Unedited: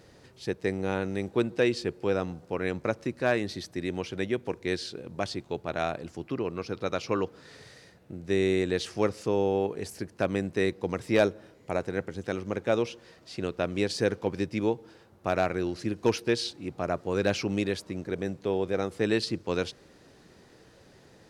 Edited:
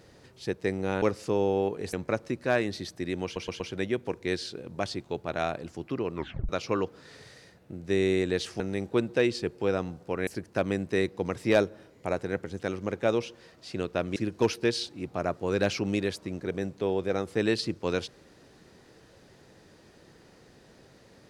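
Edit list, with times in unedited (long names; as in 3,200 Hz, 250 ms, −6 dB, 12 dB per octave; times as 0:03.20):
0:01.02–0:02.69: swap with 0:09.00–0:09.91
0:04.00: stutter 0.12 s, 4 plays
0:06.55: tape stop 0.34 s
0:13.80–0:15.80: remove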